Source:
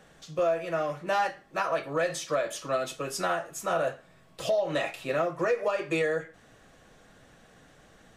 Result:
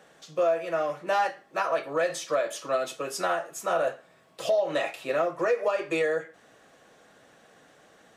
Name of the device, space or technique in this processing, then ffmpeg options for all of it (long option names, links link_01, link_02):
filter by subtraction: -filter_complex "[0:a]asplit=2[link_01][link_02];[link_02]lowpass=490,volume=-1[link_03];[link_01][link_03]amix=inputs=2:normalize=0"